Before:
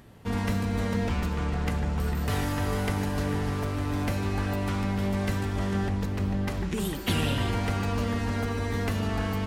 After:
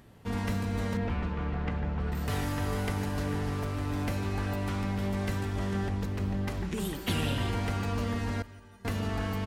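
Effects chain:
0:00.97–0:02.12: low-pass filter 2,800 Hz 12 dB per octave
0:08.42–0:08.85: stiff-string resonator 180 Hz, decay 0.81 s, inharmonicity 0.03
repeating echo 171 ms, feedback 52%, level −19.5 dB
level −3.5 dB

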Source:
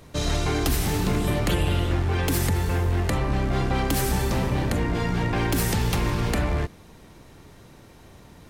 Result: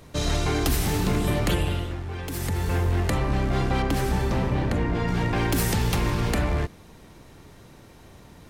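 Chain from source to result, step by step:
0:01.51–0:02.75: duck −9 dB, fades 0.44 s
0:03.82–0:05.08: low-pass filter 2,900 Hz 6 dB per octave

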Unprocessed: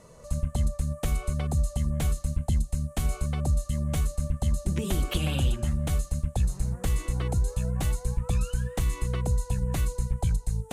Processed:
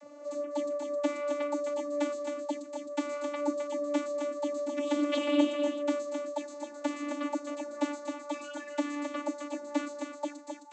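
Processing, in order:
channel vocoder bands 32, saw 291 Hz
single-tap delay 263 ms −6 dB

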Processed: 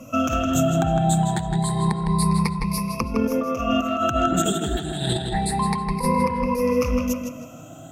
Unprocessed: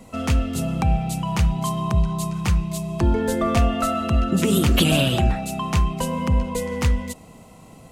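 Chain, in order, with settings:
rippled gain that drifts along the octave scale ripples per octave 0.89, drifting +0.28 Hz, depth 22 dB
compressor whose output falls as the input rises −19 dBFS, ratio −0.5
notch filter 3,000 Hz, Q 7.9
on a send: tape delay 160 ms, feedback 41%, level −3 dB, low-pass 4,400 Hz
on the sum: level −4 dB

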